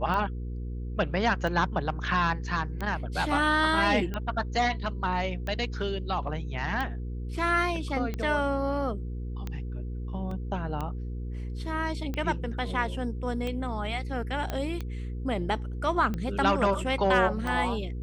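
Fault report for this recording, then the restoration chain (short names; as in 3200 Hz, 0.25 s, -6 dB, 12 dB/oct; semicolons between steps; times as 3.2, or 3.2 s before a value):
hum 60 Hz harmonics 8 -34 dBFS
tick 45 rpm -20 dBFS
10.31 gap 3.3 ms
14.5 pop -17 dBFS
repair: de-click; de-hum 60 Hz, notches 8; interpolate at 10.31, 3.3 ms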